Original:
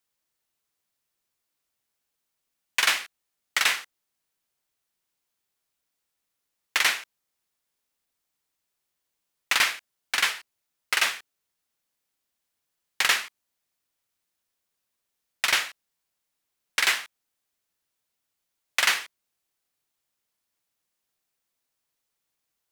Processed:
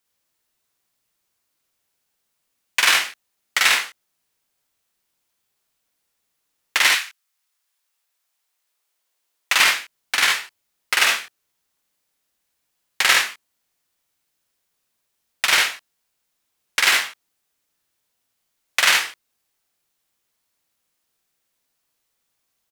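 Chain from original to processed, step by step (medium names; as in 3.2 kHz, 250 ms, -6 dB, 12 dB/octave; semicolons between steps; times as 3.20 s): 6.87–9.55 s: high-pass 1.3 kHz -> 330 Hz 12 dB/octave; early reflections 53 ms -3 dB, 75 ms -4.5 dB; trim +4 dB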